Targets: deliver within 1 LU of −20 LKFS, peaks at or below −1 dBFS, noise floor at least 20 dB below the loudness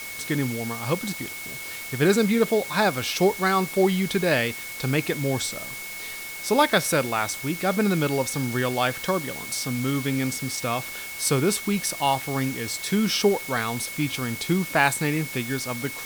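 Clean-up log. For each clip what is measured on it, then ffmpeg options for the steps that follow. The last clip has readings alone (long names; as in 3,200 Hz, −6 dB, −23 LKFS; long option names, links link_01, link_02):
interfering tone 2,200 Hz; level of the tone −36 dBFS; background noise floor −36 dBFS; target noise floor −45 dBFS; integrated loudness −24.5 LKFS; sample peak −4.0 dBFS; target loudness −20.0 LKFS
→ -af "bandreject=frequency=2200:width=30"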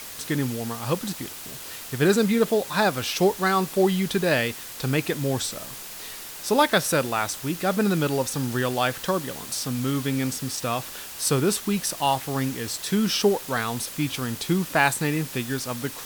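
interfering tone none found; background noise floor −38 dBFS; target noise floor −45 dBFS
→ -af "afftdn=noise_reduction=7:noise_floor=-38"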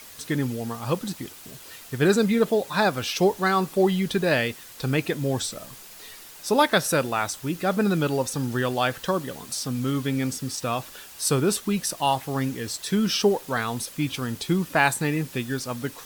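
background noise floor −45 dBFS; integrated loudness −25.0 LKFS; sample peak −5.0 dBFS; target loudness −20.0 LKFS
→ -af "volume=5dB,alimiter=limit=-1dB:level=0:latency=1"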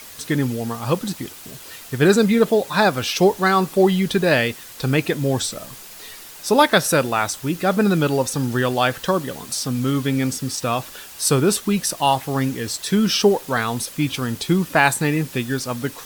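integrated loudness −20.0 LKFS; sample peak −1.0 dBFS; background noise floor −40 dBFS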